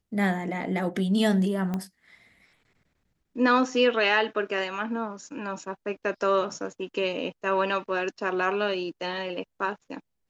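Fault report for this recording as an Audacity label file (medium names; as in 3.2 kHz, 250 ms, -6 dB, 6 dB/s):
1.740000	1.740000	pop -18 dBFS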